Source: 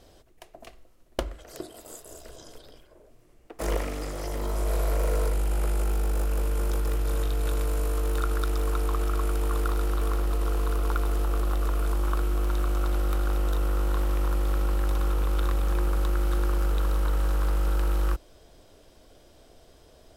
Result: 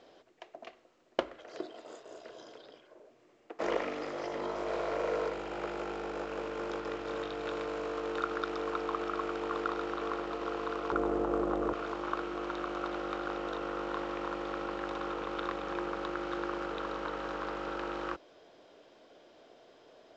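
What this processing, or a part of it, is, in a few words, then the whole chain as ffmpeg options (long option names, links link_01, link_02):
telephone: -filter_complex "[0:a]asettb=1/sr,asplit=3[link_01][link_02][link_03];[link_01]atrim=end=10.924[link_04];[link_02]atrim=start=10.92:end=11.73,asetpts=PTS-STARTPTS,afade=type=in:duration=0.004:curve=qsin,afade=type=out:start_time=0.806:duration=0.004:curve=qsin,tiltshelf=frequency=1200:gain=9.5[link_05];[link_03]atrim=start=11.726[link_06];[link_04][link_05]acrossfade=duration=0.004:curve1=hsin:curve2=qsin[link_07];[link_07][link_06]acrossfade=duration=0.004:curve1=qsin:curve2=hsin,highpass=300,lowpass=3400" -ar 16000 -c:a pcm_mulaw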